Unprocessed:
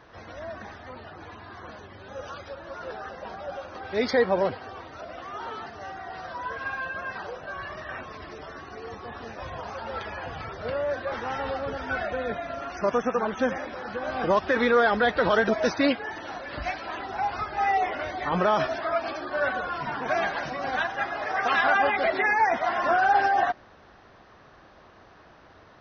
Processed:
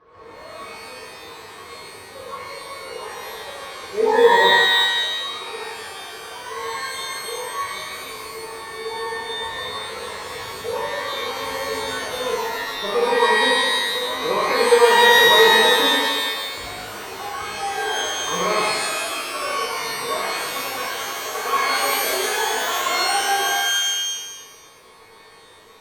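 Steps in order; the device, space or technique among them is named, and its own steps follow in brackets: inside a helmet (high shelf 5300 Hz -8.5 dB; small resonant body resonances 450/1100 Hz, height 17 dB, ringing for 45 ms); shimmer reverb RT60 1.2 s, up +12 st, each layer -2 dB, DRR -5 dB; gain -11.5 dB

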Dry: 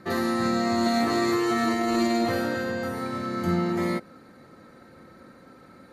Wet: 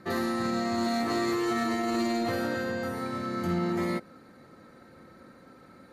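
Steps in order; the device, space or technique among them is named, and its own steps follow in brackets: limiter into clipper (limiter -17 dBFS, peak gain reduction 4 dB; hard clip -19.5 dBFS, distortion -24 dB); gain -2.5 dB

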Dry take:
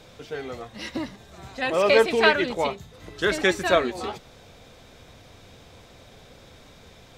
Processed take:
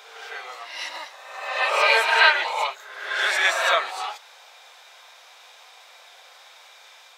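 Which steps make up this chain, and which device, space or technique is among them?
ghost voice (reverse; reverb RT60 1.2 s, pre-delay 14 ms, DRR -1.5 dB; reverse; HPF 780 Hz 24 dB/oct); gain +2 dB

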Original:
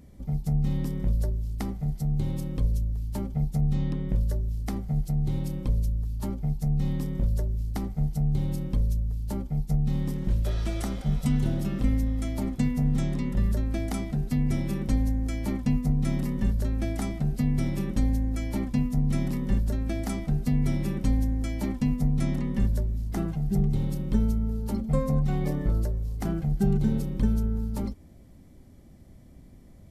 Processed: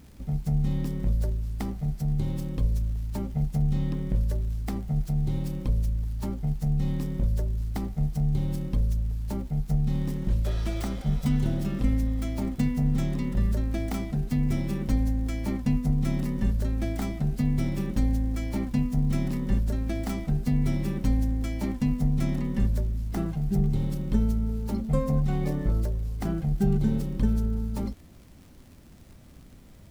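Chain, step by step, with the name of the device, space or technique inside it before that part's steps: record under a worn stylus (tracing distortion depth 0.12 ms; crackle; pink noise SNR 36 dB)

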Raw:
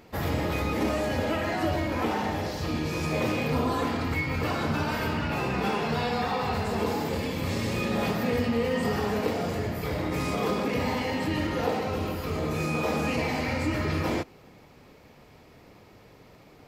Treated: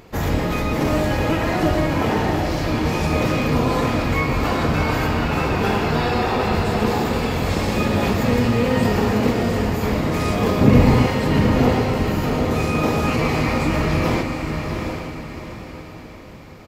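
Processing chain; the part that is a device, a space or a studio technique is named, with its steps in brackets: octave pedal (harmoniser -12 st -2 dB); 10.61–11.07 low shelf 420 Hz +11.5 dB; diffused feedback echo 0.759 s, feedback 41%, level -5 dB; gain +5 dB

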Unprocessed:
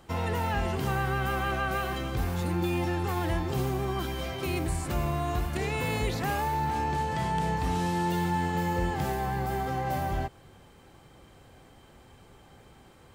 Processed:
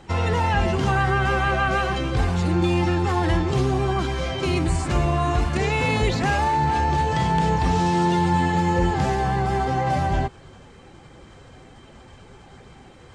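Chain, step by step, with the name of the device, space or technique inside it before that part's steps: clip after many re-uploads (LPF 7900 Hz 24 dB/oct; bin magnitudes rounded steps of 15 dB); gain +8.5 dB

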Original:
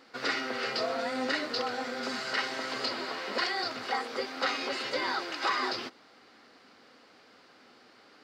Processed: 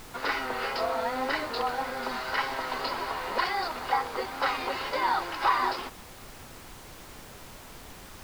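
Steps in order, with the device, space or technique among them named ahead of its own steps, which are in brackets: horn gramophone (BPF 250–4100 Hz; bell 930 Hz +11 dB 0.56 oct; wow and flutter; pink noise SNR 15 dB)

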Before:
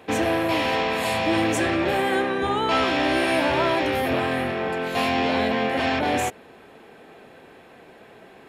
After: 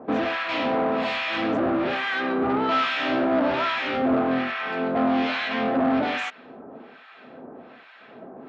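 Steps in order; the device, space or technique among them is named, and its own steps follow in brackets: guitar amplifier with harmonic tremolo (harmonic tremolo 1.2 Hz, depth 100%, crossover 1100 Hz; soft clip -28 dBFS, distortion -10 dB; speaker cabinet 95–4400 Hz, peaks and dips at 100 Hz -7 dB, 250 Hz +10 dB, 640 Hz +5 dB, 1300 Hz +7 dB); gain +5 dB

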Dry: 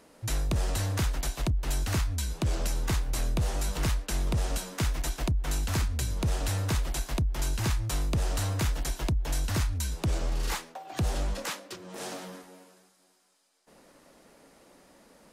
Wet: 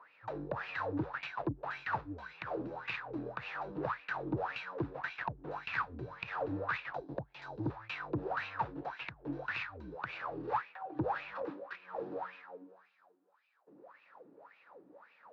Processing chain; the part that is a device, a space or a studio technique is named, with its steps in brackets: 6.95–7.7 band shelf 1800 Hz -9.5 dB; wah-wah guitar rig (wah 1.8 Hz 290–2600 Hz, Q 8.2; tube stage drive 36 dB, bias 0.25; speaker cabinet 93–3600 Hz, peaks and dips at 130 Hz +6 dB, 240 Hz -8 dB, 360 Hz -7 dB, 640 Hz -6 dB, 2100 Hz -7 dB, 3100 Hz -8 dB); gain +16 dB

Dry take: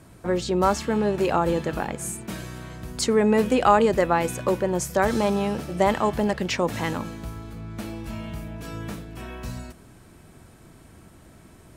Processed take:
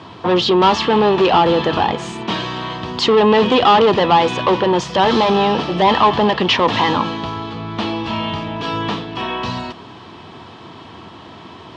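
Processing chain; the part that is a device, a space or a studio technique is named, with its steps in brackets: overdrive pedal into a guitar cabinet (overdrive pedal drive 26 dB, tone 4000 Hz, clips at -4 dBFS; speaker cabinet 83–4600 Hz, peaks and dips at 92 Hz +8 dB, 580 Hz -7 dB, 1000 Hz +6 dB, 1500 Hz -9 dB, 2200 Hz -7 dB, 3200 Hz +6 dB); gain +1 dB

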